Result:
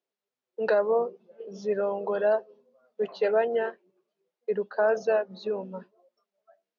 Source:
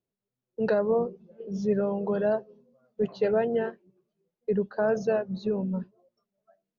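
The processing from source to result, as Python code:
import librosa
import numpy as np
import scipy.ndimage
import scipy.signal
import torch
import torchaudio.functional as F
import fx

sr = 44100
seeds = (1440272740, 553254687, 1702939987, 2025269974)

y = fx.bandpass_edges(x, sr, low_hz=490.0, high_hz=5300.0)
y = F.gain(torch.from_numpy(y), 4.0).numpy()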